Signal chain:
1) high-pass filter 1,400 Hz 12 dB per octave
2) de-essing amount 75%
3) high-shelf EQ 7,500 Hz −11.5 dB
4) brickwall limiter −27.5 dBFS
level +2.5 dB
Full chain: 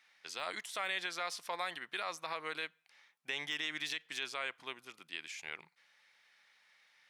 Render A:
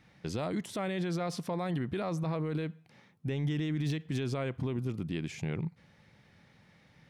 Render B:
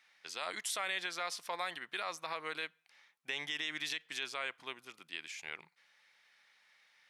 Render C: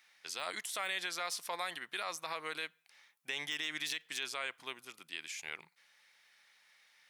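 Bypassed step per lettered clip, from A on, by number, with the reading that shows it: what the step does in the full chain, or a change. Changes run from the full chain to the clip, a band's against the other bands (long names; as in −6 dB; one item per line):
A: 1, 125 Hz band +32.5 dB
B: 2, 8 kHz band +4.0 dB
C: 3, 8 kHz band +6.0 dB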